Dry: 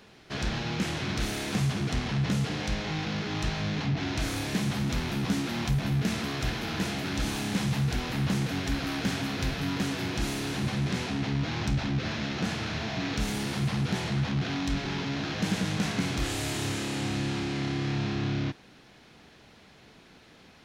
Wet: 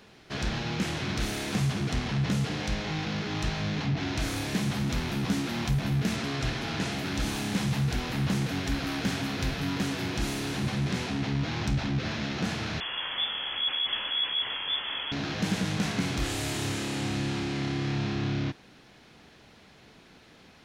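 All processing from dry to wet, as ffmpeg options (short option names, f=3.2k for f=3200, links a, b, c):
-filter_complex "[0:a]asettb=1/sr,asplit=3[a][b][c];[a]atrim=end=6.164[d];[b]atrim=start=6.16:end=6.92,asetpts=PTS-STARTPTS,afade=t=in:d=0.004:c=qsin,afade=t=out:st=0.756:d=0.004:c=qsin,lowpass=9.3k,aecho=1:1:7.4:0.32,atrim=end_sample=33516[e];[c]atrim=start=6.916[f];[d][e]acrossfade=d=0.004:c1=hsin:c2=qsin[g];[g][f]acrossfade=d=0.004:c1=qsin:c2=hsin,asettb=1/sr,asplit=3[h][i][j];[h]atrim=end=12.804[k];[i]atrim=start=12.8:end=15.12,asetpts=PTS-STARTPTS,afade=t=in:d=0.004:c=qsin,afade=t=out:st=2.316:d=0.004:c=qsin,equalizer=f=270:t=o:w=0.74:g=-6.5,lowpass=f=3k:t=q:w=0.5098,lowpass=f=3k:t=q:w=0.6013,lowpass=f=3k:t=q:w=0.9,lowpass=f=3k:t=q:w=2.563,afreqshift=-3500[l];[j]atrim=start=15.116[m];[k][l]acrossfade=d=0.004:c1=hsin:c2=qsin[n];[n][m]acrossfade=d=0.004:c1=qsin:c2=hsin"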